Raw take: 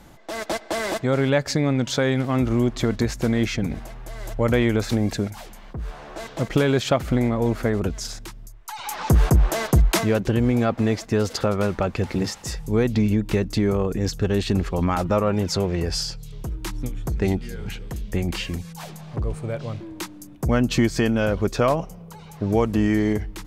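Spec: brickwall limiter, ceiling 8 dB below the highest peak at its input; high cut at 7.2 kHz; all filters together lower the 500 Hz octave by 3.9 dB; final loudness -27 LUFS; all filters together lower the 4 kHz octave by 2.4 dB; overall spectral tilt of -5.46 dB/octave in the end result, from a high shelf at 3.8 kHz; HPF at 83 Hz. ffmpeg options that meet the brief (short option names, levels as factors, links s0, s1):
-af "highpass=83,lowpass=7200,equalizer=f=500:t=o:g=-5,highshelf=f=3800:g=5,equalizer=f=4000:t=o:g=-6,volume=1.12,alimiter=limit=0.158:level=0:latency=1"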